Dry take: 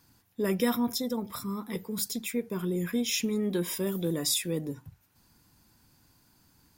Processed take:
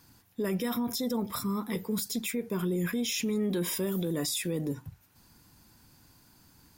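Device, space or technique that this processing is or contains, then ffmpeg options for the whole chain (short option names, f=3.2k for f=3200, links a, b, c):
stacked limiters: -af "alimiter=limit=-21dB:level=0:latency=1:release=113,alimiter=level_in=3dB:limit=-24dB:level=0:latency=1:release=26,volume=-3dB,volume=4dB"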